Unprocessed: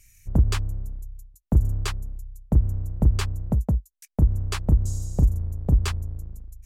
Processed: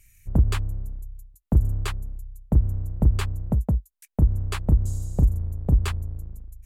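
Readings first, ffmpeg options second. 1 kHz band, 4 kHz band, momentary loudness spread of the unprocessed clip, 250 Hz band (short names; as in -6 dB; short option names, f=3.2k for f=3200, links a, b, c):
0.0 dB, -3.0 dB, 15 LU, 0.0 dB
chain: -af "equalizer=f=5.6k:w=1.8:g=-8"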